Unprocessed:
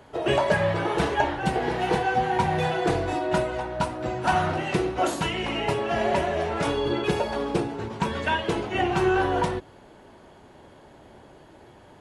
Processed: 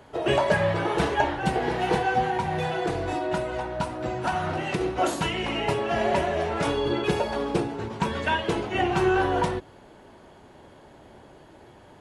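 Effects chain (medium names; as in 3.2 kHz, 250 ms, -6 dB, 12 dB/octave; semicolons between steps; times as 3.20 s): 2.29–4.81 s: compression, threshold -23 dBFS, peak gain reduction 6 dB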